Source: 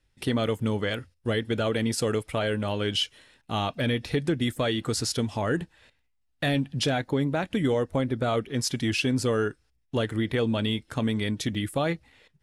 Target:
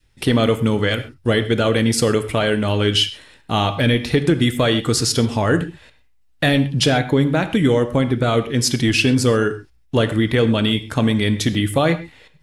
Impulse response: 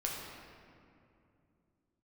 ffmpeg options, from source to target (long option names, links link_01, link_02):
-filter_complex "[0:a]adynamicequalizer=threshold=0.01:dfrequency=740:dqfactor=1.1:tfrequency=740:tqfactor=1.1:attack=5:release=100:ratio=0.375:range=2:mode=cutabove:tftype=bell,asplit=2[link_01][link_02];[1:a]atrim=start_sample=2205,atrim=end_sample=6174[link_03];[link_02][link_03]afir=irnorm=-1:irlink=0,volume=-6dB[link_04];[link_01][link_04]amix=inputs=2:normalize=0,volume=6.5dB"